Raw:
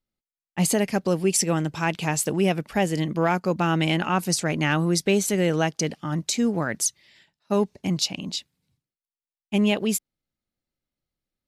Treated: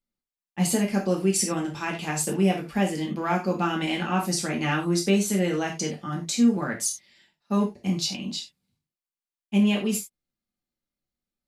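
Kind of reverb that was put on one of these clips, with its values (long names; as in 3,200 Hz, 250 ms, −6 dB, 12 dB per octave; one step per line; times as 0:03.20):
reverb whose tail is shaped and stops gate 120 ms falling, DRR −1.5 dB
level −6.5 dB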